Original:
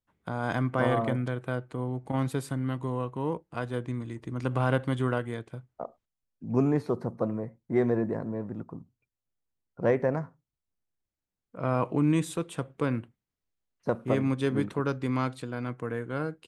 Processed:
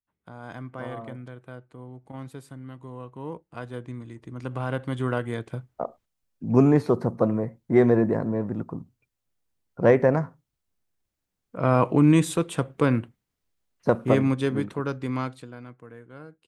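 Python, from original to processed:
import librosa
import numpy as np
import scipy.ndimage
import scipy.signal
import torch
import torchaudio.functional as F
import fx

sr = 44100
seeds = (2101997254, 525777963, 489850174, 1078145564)

y = fx.gain(x, sr, db=fx.line((2.77, -10.0), (3.43, -3.5), (4.71, -3.5), (5.53, 7.0), (14.06, 7.0), (14.67, 0.0), (15.2, 0.0), (15.81, -12.0)))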